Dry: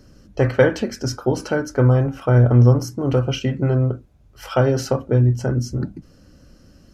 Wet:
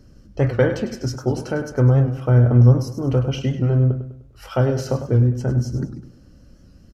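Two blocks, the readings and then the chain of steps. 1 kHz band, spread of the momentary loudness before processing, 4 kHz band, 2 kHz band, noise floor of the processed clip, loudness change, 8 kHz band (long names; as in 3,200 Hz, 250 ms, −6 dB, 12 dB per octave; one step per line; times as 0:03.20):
−4.0 dB, 11 LU, −4.5 dB, −4.5 dB, −49 dBFS, −0.5 dB, can't be measured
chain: low-shelf EQ 270 Hz +7 dB
on a send: repeating echo 101 ms, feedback 42%, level −10.5 dB
on the sum: wow of a warped record 78 rpm, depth 100 cents
level −5 dB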